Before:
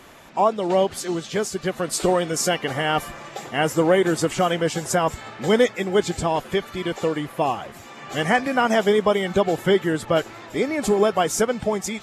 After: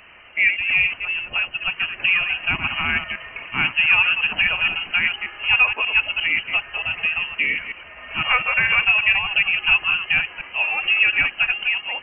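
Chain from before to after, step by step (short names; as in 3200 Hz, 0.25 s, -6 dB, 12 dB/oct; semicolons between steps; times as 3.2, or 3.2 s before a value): reverse delay 0.117 s, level -7 dB; inverted band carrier 3000 Hz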